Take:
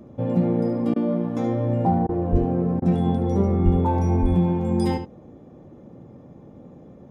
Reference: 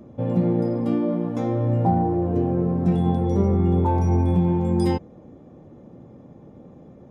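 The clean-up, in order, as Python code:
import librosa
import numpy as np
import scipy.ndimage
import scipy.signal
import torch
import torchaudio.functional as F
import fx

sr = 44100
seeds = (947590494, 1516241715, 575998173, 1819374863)

y = fx.highpass(x, sr, hz=140.0, slope=24, at=(2.31, 2.43), fade=0.02)
y = fx.highpass(y, sr, hz=140.0, slope=24, at=(3.64, 3.76), fade=0.02)
y = fx.highpass(y, sr, hz=140.0, slope=24, at=(4.21, 4.33), fade=0.02)
y = fx.fix_interpolate(y, sr, at_s=(0.94, 2.07, 2.8), length_ms=19.0)
y = fx.fix_echo_inverse(y, sr, delay_ms=73, level_db=-10.0)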